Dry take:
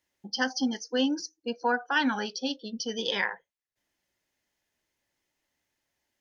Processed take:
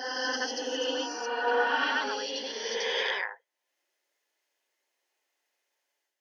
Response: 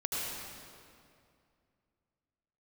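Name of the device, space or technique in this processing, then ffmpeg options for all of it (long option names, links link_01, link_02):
ghost voice: -filter_complex "[0:a]areverse[link_01];[1:a]atrim=start_sample=2205[link_02];[link_01][link_02]afir=irnorm=-1:irlink=0,areverse,highpass=frequency=390:width=0.5412,highpass=frequency=390:width=1.3066,volume=-4dB"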